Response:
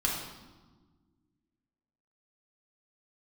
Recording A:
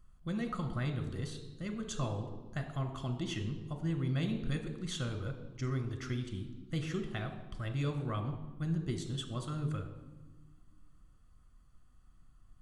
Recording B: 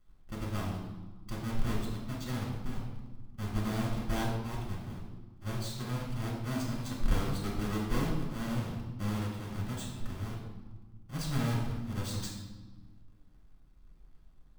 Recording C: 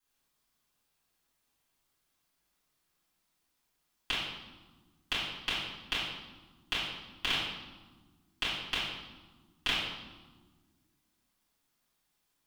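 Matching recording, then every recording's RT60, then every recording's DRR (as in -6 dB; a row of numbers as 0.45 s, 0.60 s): B; 1.4 s, 1.4 s, 1.4 s; 5.0 dB, -3.5 dB, -12.5 dB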